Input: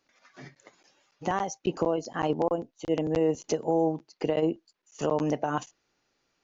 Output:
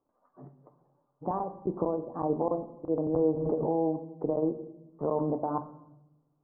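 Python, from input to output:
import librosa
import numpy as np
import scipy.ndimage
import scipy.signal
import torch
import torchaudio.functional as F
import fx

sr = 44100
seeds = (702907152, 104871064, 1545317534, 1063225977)

y = scipy.signal.sosfilt(scipy.signal.ellip(4, 1.0, 60, 1100.0, 'lowpass', fs=sr, output='sos'), x)
y = fx.room_shoebox(y, sr, seeds[0], volume_m3=310.0, walls='mixed', distance_m=0.39)
y = fx.pre_swell(y, sr, db_per_s=38.0, at=(3.13, 3.76))
y = F.gain(torch.from_numpy(y), -2.5).numpy()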